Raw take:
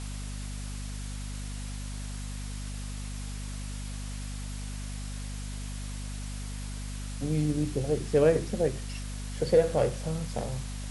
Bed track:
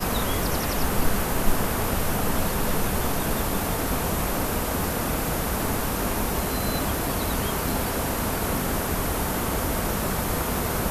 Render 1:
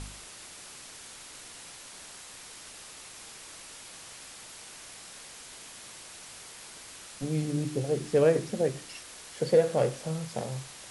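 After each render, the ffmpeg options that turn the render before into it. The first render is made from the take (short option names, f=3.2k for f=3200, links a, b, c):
-af "bandreject=f=50:t=h:w=4,bandreject=f=100:t=h:w=4,bandreject=f=150:t=h:w=4,bandreject=f=200:t=h:w=4,bandreject=f=250:t=h:w=4,bandreject=f=300:t=h:w=4"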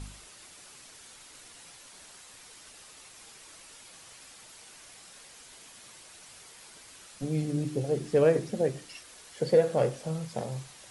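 -af "afftdn=nr=6:nf=-47"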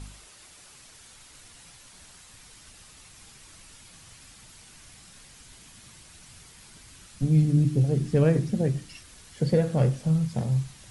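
-af "asubboost=boost=6.5:cutoff=190"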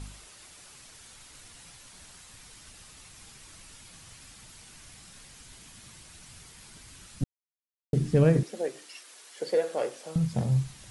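-filter_complex "[0:a]asettb=1/sr,asplit=3[a][b][c];[a]atrim=end=8.434[d];[b]atrim=start=8.43:end=10.16,asetpts=PTS-STARTPTS,afade=t=in:d=0.004:c=qsin,afade=t=out:st=1.726:d=0.004:c=qsin,highpass=f=380:w=0.5412,highpass=f=380:w=1.3066[e];[c]atrim=start=10.156[f];[d][e]acrossfade=d=0.004:c1=hsin:c2=qsin[g];[g][f]acrossfade=d=0.004:c1=qsin:c2=hsin,asplit=3[h][i][j];[h]atrim=end=7.24,asetpts=PTS-STARTPTS,afade=t=out:st=7.236:d=0.004:c=hsin[k];[i]atrim=start=7.24:end=7.93,asetpts=PTS-STARTPTS,volume=0[l];[j]atrim=start=7.93,asetpts=PTS-STARTPTS,afade=t=in:d=0.004:c=hsin[m];[k][l][m]concat=n=3:v=0:a=1"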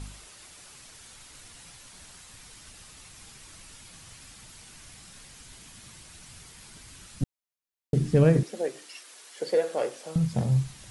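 -af "volume=1.5dB"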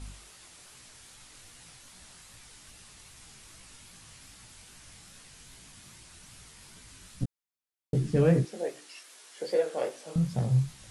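-af "flanger=delay=16:depth=7.8:speed=2.5"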